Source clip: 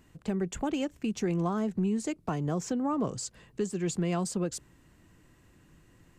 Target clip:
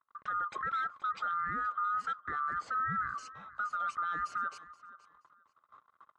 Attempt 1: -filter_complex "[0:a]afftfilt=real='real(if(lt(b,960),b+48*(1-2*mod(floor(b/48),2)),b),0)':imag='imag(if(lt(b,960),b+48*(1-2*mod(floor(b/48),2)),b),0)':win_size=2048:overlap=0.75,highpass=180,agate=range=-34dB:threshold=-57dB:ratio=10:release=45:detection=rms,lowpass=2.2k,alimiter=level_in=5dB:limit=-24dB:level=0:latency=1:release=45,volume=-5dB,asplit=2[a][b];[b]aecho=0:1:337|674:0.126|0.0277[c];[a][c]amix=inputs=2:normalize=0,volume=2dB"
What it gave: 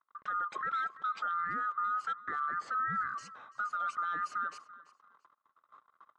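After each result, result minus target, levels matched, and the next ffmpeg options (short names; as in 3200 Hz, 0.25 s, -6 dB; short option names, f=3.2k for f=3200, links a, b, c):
echo 0.139 s early; 125 Hz band -4.5 dB
-filter_complex "[0:a]afftfilt=real='real(if(lt(b,960),b+48*(1-2*mod(floor(b/48),2)),b),0)':imag='imag(if(lt(b,960),b+48*(1-2*mod(floor(b/48),2)),b),0)':win_size=2048:overlap=0.75,highpass=180,agate=range=-34dB:threshold=-57dB:ratio=10:release=45:detection=rms,lowpass=2.2k,alimiter=level_in=5dB:limit=-24dB:level=0:latency=1:release=45,volume=-5dB,asplit=2[a][b];[b]aecho=0:1:476|952:0.126|0.0277[c];[a][c]amix=inputs=2:normalize=0,volume=2dB"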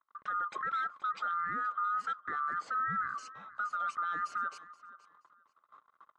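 125 Hz band -4.5 dB
-filter_complex "[0:a]afftfilt=real='real(if(lt(b,960),b+48*(1-2*mod(floor(b/48),2)),b),0)':imag='imag(if(lt(b,960),b+48*(1-2*mod(floor(b/48),2)),b),0)':win_size=2048:overlap=0.75,highpass=73,agate=range=-34dB:threshold=-57dB:ratio=10:release=45:detection=rms,lowpass=2.2k,alimiter=level_in=5dB:limit=-24dB:level=0:latency=1:release=45,volume=-5dB,asplit=2[a][b];[b]aecho=0:1:476|952:0.126|0.0277[c];[a][c]amix=inputs=2:normalize=0,volume=2dB"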